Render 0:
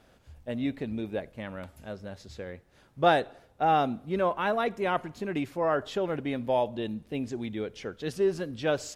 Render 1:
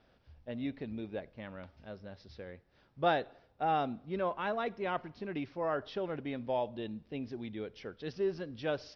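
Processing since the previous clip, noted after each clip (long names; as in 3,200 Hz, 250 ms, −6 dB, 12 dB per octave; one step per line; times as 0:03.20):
Butterworth low-pass 5,700 Hz 96 dB per octave
level −7 dB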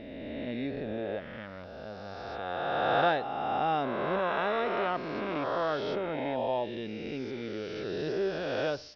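peak hold with a rise ahead of every peak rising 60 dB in 2.77 s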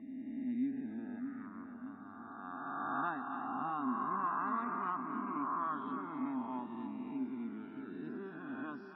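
spectral peaks only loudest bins 64
pair of resonant band-passes 530 Hz, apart 2.1 octaves
echo with a time of its own for lows and highs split 740 Hz, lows 617 ms, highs 270 ms, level −8 dB
level +3.5 dB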